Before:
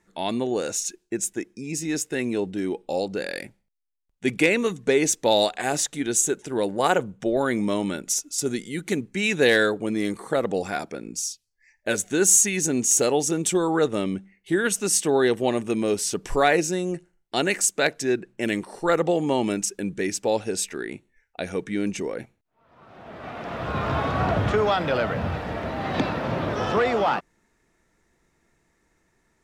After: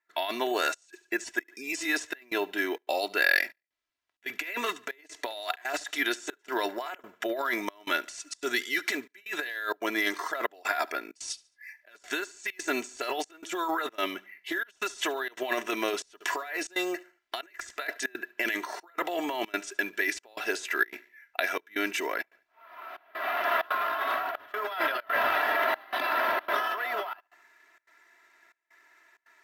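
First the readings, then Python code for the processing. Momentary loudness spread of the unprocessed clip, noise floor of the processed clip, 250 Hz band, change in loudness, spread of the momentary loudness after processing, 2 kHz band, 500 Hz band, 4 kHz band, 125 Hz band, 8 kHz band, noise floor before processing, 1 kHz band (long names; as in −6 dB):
11 LU, −75 dBFS, −12.0 dB, −7.0 dB, 11 LU, +0.5 dB, −10.5 dB, −4.0 dB, below −30 dB, −17.5 dB, −70 dBFS, −3.0 dB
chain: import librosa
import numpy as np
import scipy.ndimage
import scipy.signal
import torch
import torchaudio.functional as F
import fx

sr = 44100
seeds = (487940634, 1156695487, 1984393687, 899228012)

p1 = scipy.signal.sosfilt(scipy.signal.butter(2, 790.0, 'highpass', fs=sr, output='sos'), x)
p2 = p1 + 0.72 * np.pad(p1, (int(3.0 * sr / 1000.0), 0))[:len(p1)]
p3 = fx.over_compress(p2, sr, threshold_db=-33.0, ratio=-1.0)
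p4 = fx.peak_eq(p3, sr, hz=1800.0, db=7.0, octaves=1.3)
p5 = (np.kron(p4[::3], np.eye(3)[0]) * 3)[:len(p4)]
p6 = fx.dynamic_eq(p5, sr, hz=2300.0, q=4.4, threshold_db=-44.0, ratio=4.0, max_db=-5)
p7 = scipy.signal.sosfilt(scipy.signal.butter(2, 4500.0, 'lowpass', fs=sr, output='sos'), p6)
p8 = p7 + fx.echo_feedback(p7, sr, ms=72, feedback_pct=37, wet_db=-22.5, dry=0)
y = fx.step_gate(p8, sr, bpm=162, pattern='.xxxxxxx..xxxxx', floor_db=-24.0, edge_ms=4.5)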